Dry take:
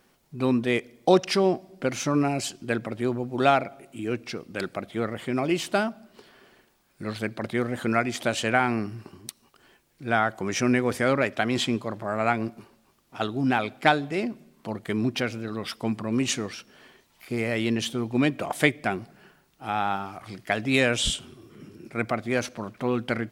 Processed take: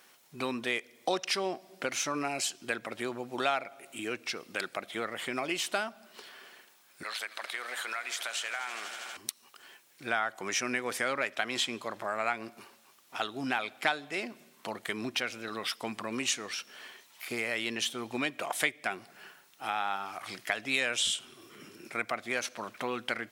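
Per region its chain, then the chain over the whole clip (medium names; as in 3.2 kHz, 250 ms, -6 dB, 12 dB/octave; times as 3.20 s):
7.03–9.17 s: high-pass 790 Hz + compression 3:1, threshold -35 dBFS + echo with a slow build-up 80 ms, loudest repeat 5, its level -18 dB
whole clip: high-pass 1.4 kHz 6 dB/octave; band-stop 4.7 kHz, Q 23; compression 2:1, threshold -42 dBFS; trim +7.5 dB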